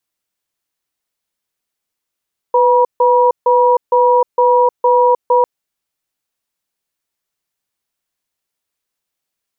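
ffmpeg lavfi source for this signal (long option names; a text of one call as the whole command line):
ffmpeg -f lavfi -i "aevalsrc='0.299*(sin(2*PI*497*t)+sin(2*PI*963*t))*clip(min(mod(t,0.46),0.31-mod(t,0.46))/0.005,0,1)':duration=2.9:sample_rate=44100" out.wav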